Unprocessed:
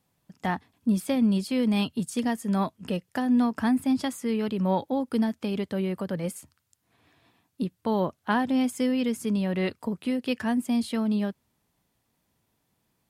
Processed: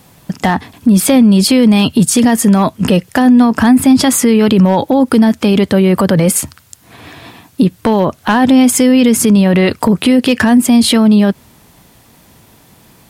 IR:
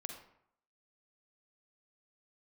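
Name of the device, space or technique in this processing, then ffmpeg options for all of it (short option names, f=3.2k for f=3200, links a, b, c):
loud club master: -af "acompressor=threshold=-29dB:ratio=2,asoftclip=type=hard:threshold=-21dB,alimiter=level_in=30dB:limit=-1dB:release=50:level=0:latency=1,volume=-1dB"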